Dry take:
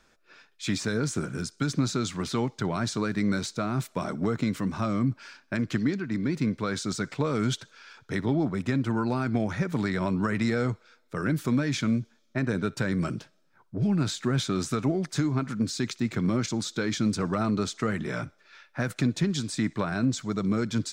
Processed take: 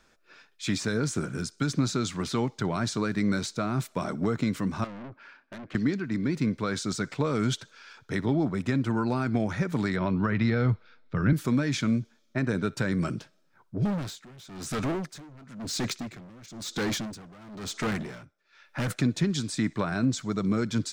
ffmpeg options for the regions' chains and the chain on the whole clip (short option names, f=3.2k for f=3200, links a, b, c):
-filter_complex "[0:a]asettb=1/sr,asplit=3[a][b][c];[a]atrim=end=4.844[d];[b]atrim=start=4.84:end=5.75,asetpts=PTS-STARTPTS,afade=t=in:d=0.004:c=qsin,afade=t=out:st=0.906:d=0.004:c=qsin,lowpass=2.2k,aeval=exprs='(tanh(63.1*val(0)+0.35)-tanh(0.35))/63.1':c=same,lowshelf=f=180:g=-9.5[e];[c]atrim=start=5.746[f];[d][e]acrossfade=d=0.004:c1=hsin:c2=qsin[g];[g][f]acrossfade=d=0.004:c1=qsin:c2=hsin,asettb=1/sr,asplit=3[h][i][j];[h]atrim=end=9.964[k];[i]atrim=start=9.96:end=11.33,asetpts=PTS-STARTPTS,afade=t=in:d=0.004:c=qsin,afade=t=out:st=1.366:d=0.004:c=qsin,lowpass=f=4.4k:w=0.5412,lowpass=f=4.4k:w=1.3066,asubboost=boost=8:cutoff=190[l];[j]atrim=start=11.326[m];[k][l]acrossfade=d=0.004:c1=hsin:c2=qsin[n];[n][m]acrossfade=d=0.004:c1=qsin:c2=hsin,asettb=1/sr,asplit=3[o][p][q];[o]atrim=end=13.854[r];[p]atrim=start=13.85:end=18.96,asetpts=PTS-STARTPTS,afade=t=in:d=0.004:c=qsin,afade=t=out:st=5.106:d=0.004:c=qsin,volume=32dB,asoftclip=hard,volume=-32dB,acontrast=69,aeval=exprs='val(0)*pow(10,-22*(0.5-0.5*cos(2*PI*1*n/s))/20)':c=same[s];[q]atrim=start=18.956[t];[r][s]acrossfade=d=0.004:c1=hsin:c2=qsin[u];[u][t]acrossfade=d=0.004:c1=qsin:c2=hsin"